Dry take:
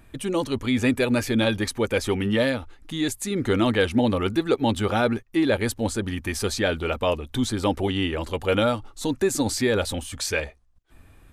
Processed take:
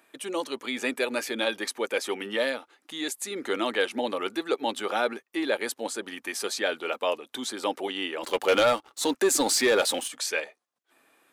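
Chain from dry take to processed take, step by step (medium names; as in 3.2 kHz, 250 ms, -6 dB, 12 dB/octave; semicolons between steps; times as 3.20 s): Bessel high-pass 450 Hz, order 4; 8.23–10.08 s: waveshaping leveller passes 2; trim -2 dB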